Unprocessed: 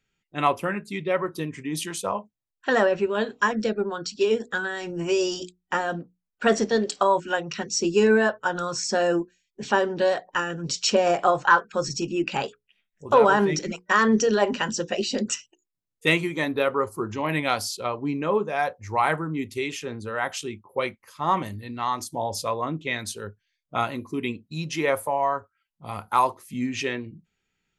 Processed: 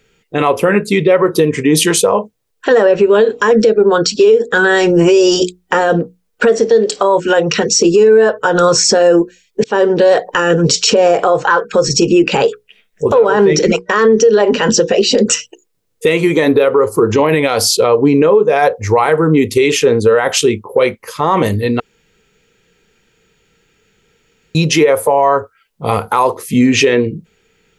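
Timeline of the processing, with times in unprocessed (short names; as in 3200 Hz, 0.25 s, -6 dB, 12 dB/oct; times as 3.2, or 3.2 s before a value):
9.64–10.17 fade in
13.19–15.11 LPF 6900 Hz
21.8–24.55 room tone
whole clip: bell 460 Hz +14.5 dB 0.38 oct; compressor 5:1, threshold -22 dBFS; maximiser +20 dB; gain -1 dB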